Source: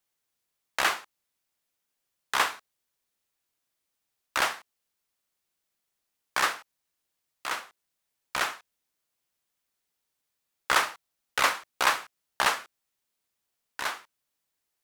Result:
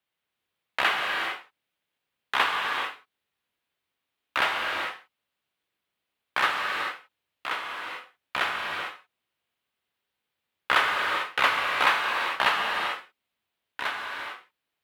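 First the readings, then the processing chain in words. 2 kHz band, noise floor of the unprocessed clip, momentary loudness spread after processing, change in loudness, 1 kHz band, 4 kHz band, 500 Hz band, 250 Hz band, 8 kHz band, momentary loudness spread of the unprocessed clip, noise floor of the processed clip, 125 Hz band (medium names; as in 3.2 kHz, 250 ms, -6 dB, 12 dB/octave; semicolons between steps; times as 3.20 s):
+4.5 dB, -82 dBFS, 15 LU, +2.0 dB, +3.5 dB, +3.5 dB, +3.0 dB, +3.0 dB, -9.5 dB, 16 LU, -84 dBFS, +2.5 dB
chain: high-pass 56 Hz; resonant high shelf 4.4 kHz -10.5 dB, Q 1.5; gated-style reverb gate 470 ms flat, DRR 0 dB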